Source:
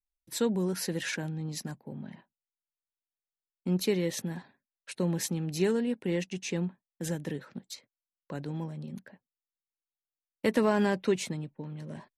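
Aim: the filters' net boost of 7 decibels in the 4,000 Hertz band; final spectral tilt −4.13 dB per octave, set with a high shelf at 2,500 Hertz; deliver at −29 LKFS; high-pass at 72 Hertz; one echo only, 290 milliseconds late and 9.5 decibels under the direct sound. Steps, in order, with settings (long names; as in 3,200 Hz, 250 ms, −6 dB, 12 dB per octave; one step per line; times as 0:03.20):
high-pass filter 72 Hz
high-shelf EQ 2,500 Hz +3.5 dB
parametric band 4,000 Hz +5.5 dB
single-tap delay 290 ms −9.5 dB
level +1.5 dB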